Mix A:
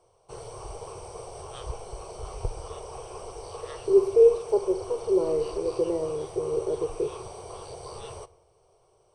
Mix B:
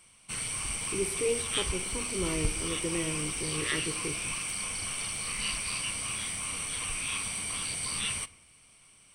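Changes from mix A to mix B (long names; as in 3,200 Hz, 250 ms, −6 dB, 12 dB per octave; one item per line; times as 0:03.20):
speech: entry −2.95 s
master: remove drawn EQ curve 120 Hz 0 dB, 270 Hz −20 dB, 380 Hz +15 dB, 820 Hz +9 dB, 2,100 Hz −22 dB, 3,500 Hz −15 dB, 5,700 Hz −9 dB, 9,200 Hz −20 dB, 13,000 Hz −23 dB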